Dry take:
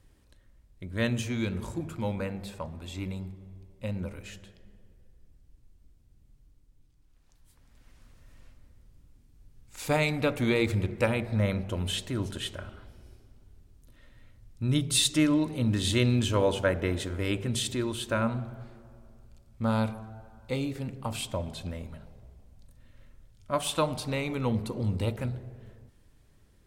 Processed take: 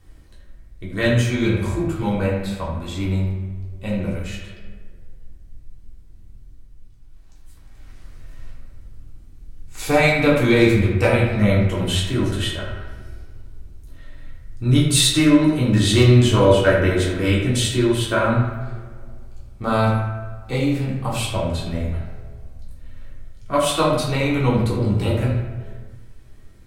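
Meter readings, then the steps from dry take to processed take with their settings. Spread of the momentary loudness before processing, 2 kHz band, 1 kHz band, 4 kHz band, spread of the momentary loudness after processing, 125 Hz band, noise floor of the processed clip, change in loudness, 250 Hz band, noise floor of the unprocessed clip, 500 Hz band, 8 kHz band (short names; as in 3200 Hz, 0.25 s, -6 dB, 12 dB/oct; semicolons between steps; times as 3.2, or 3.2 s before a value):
17 LU, +11.0 dB, +11.0 dB, +9.0 dB, 17 LU, +11.5 dB, -43 dBFS, +10.5 dB, +10.5 dB, -61 dBFS, +11.0 dB, +8.0 dB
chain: hard clip -16 dBFS, distortion -28 dB; narrowing echo 77 ms, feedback 66%, band-pass 1600 Hz, level -5.5 dB; shoebox room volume 350 m³, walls furnished, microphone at 3.5 m; gain +3.5 dB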